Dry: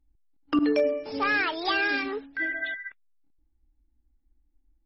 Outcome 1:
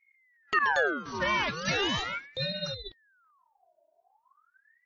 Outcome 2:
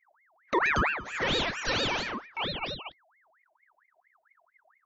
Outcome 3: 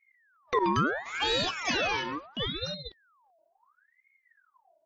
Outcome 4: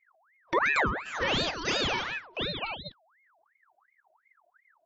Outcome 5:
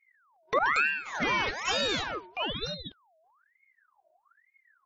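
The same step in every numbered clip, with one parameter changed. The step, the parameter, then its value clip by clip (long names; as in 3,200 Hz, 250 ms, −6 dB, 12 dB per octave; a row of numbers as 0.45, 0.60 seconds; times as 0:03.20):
ring modulator whose carrier an LFO sweeps, at: 0.39, 4.4, 0.73, 2.8, 1.1 Hertz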